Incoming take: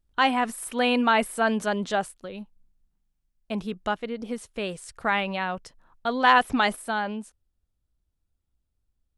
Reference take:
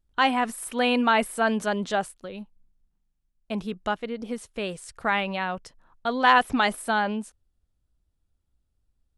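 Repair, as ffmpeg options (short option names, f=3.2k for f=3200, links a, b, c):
-af "asetnsamples=n=441:p=0,asendcmd='6.76 volume volume 3.5dB',volume=0dB"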